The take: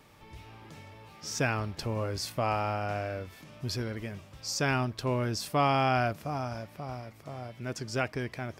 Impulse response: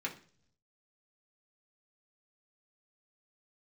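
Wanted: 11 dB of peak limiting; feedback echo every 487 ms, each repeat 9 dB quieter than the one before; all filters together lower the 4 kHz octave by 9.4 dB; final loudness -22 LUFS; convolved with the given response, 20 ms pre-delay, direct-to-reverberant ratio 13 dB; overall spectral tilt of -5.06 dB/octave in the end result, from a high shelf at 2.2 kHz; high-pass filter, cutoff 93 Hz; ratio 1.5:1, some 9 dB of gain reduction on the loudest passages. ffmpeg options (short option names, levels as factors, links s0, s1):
-filter_complex "[0:a]highpass=93,highshelf=f=2200:g=-7,equalizer=f=4000:t=o:g=-5.5,acompressor=threshold=0.00398:ratio=1.5,alimiter=level_in=3.35:limit=0.0631:level=0:latency=1,volume=0.299,aecho=1:1:487|974|1461|1948:0.355|0.124|0.0435|0.0152,asplit=2[s0][s1];[1:a]atrim=start_sample=2205,adelay=20[s2];[s1][s2]afir=irnorm=-1:irlink=0,volume=0.168[s3];[s0][s3]amix=inputs=2:normalize=0,volume=16.8"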